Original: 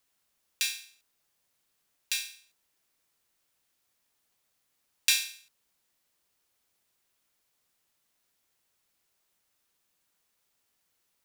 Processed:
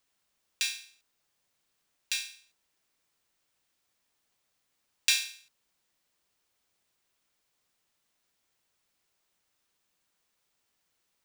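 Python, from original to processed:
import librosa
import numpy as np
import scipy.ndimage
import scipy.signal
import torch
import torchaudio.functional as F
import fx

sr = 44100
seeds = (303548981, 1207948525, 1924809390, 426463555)

y = fx.peak_eq(x, sr, hz=13000.0, db=-8.0, octaves=0.62)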